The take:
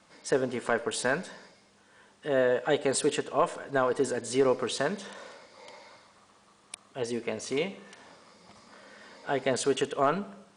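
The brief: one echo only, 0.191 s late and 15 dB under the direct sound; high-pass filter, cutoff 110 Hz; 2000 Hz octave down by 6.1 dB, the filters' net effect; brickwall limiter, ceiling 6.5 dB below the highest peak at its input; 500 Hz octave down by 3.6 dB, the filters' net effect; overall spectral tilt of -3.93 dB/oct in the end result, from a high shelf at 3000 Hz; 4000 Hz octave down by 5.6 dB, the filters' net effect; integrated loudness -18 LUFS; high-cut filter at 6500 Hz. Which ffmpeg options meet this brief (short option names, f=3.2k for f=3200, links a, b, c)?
-af "highpass=110,lowpass=6.5k,equalizer=f=500:t=o:g=-4,equalizer=f=2k:t=o:g=-8.5,highshelf=f=3k:g=6.5,equalizer=f=4k:t=o:g=-9,alimiter=limit=-21.5dB:level=0:latency=1,aecho=1:1:191:0.178,volume=16.5dB"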